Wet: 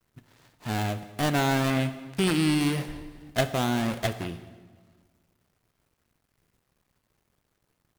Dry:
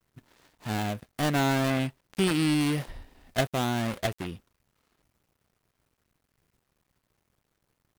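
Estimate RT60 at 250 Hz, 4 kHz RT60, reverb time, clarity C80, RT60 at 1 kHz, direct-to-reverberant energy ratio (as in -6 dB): 1.8 s, 1.2 s, 1.5 s, 14.0 dB, 1.4 s, 10.5 dB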